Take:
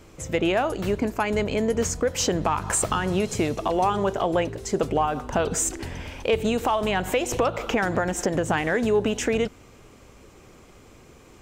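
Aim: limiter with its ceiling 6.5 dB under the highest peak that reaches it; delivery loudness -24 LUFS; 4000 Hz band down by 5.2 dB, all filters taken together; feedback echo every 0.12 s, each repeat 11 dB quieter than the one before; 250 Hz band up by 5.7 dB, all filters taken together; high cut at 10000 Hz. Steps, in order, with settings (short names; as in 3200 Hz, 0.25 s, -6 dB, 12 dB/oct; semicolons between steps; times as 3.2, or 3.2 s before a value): LPF 10000 Hz; bell 250 Hz +7.5 dB; bell 4000 Hz -8 dB; limiter -14 dBFS; feedback echo 0.12 s, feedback 28%, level -11 dB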